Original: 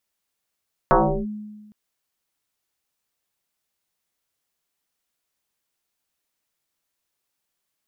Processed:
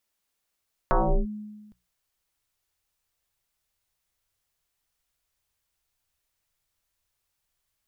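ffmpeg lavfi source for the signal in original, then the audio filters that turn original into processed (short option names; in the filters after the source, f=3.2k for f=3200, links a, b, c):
-f lavfi -i "aevalsrc='0.299*pow(10,-3*t/1.36)*sin(2*PI*211*t+6.3*clip(1-t/0.35,0,1)*sin(2*PI*0.86*211*t))':d=0.81:s=44100"
-af "bandreject=f=60:t=h:w=6,bandreject=f=120:t=h:w=6,bandreject=f=180:t=h:w=6,asubboost=boost=8:cutoff=86,alimiter=limit=-15dB:level=0:latency=1:release=289"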